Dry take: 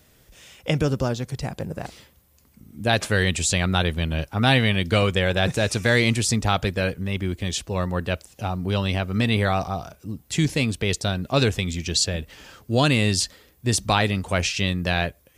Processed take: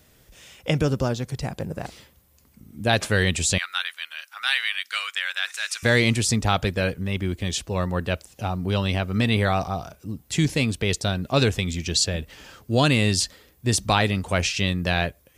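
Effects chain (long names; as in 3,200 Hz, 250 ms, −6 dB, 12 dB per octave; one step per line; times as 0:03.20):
0:03.58–0:05.83: Chebyshev high-pass filter 1,400 Hz, order 3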